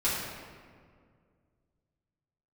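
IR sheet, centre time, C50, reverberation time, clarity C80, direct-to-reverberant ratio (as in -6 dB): 99 ms, -0.5 dB, 2.0 s, 1.5 dB, -11.5 dB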